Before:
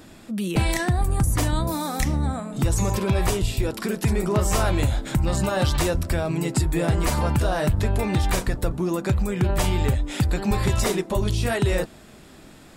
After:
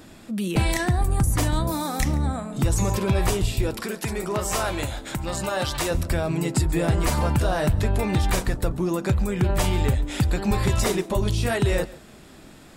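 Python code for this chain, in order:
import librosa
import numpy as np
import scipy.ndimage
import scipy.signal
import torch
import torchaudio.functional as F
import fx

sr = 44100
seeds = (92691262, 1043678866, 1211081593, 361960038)

y = fx.low_shelf(x, sr, hz=280.0, db=-10.5, at=(3.8, 5.91))
y = y + 10.0 ** (-20.0 / 20.0) * np.pad(y, (int(139 * sr / 1000.0), 0))[:len(y)]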